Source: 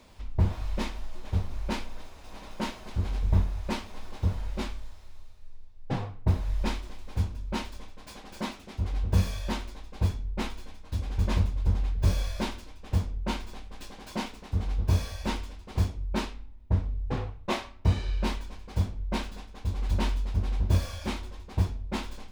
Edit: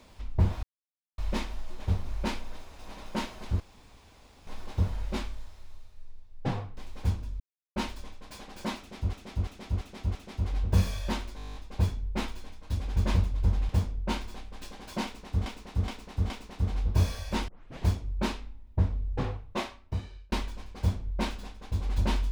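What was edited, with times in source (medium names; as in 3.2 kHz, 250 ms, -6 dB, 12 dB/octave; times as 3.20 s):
0.63 s: insert silence 0.55 s
3.05–3.92 s: room tone
6.22–6.89 s: delete
7.52 s: insert silence 0.36 s
8.55–8.89 s: loop, 5 plays
9.77 s: stutter 0.02 s, 10 plays
11.91–12.88 s: delete
14.23–14.65 s: loop, 4 plays
15.41 s: tape start 0.40 s
17.22–18.25 s: fade out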